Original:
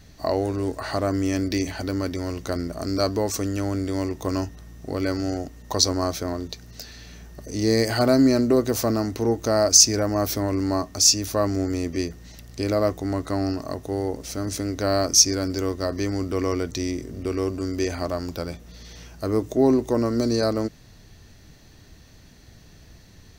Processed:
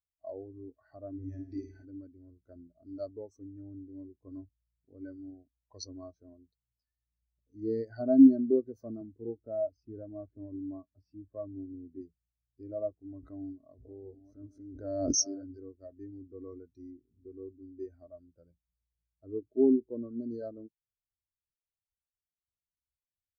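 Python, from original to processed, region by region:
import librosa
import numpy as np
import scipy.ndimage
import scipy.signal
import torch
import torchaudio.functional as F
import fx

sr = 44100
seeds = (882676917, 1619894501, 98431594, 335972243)

y = fx.chain(x, sr, fx.high_shelf(hz=2900.0, db=3.0),
    fx.room_flutter(wall_m=9.2, rt60_s=1.1), at=(1.13, 1.85))
y = fx.chain(y, sr, fx.air_absorb(metres=360.0),
    fx.band_squash(depth_pct=40), at=(9.01, 12.01))
y = fx.chain(y, sr, fx.reverse_delay(ms=655, wet_db=-6.5),
    fx.clip_hard(threshold_db=-6.5),
    fx.pre_swell(db_per_s=36.0), at=(13.16, 15.6))
y = fx.peak_eq(y, sr, hz=1600.0, db=5.5, octaves=0.29)
y = fx.spectral_expand(y, sr, expansion=2.5)
y = y * librosa.db_to_amplitude(-6.5)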